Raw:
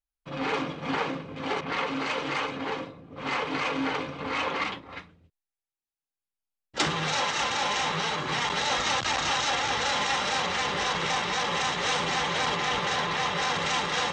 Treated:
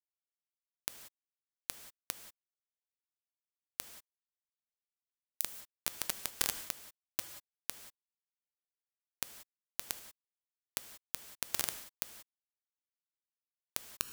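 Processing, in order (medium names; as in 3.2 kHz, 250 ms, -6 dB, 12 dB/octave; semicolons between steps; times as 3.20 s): zero-crossing glitches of -26.5 dBFS; recorder AGC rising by 67 dB/s; inverse Chebyshev high-pass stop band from 300 Hz, stop band 60 dB; peak limiter -21.5 dBFS, peak gain reduction 9 dB; chorus voices 2, 0.65 Hz, delay 28 ms, depth 1.6 ms; bit crusher 4-bit; gated-style reverb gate 210 ms flat, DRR 9 dB; trim +12.5 dB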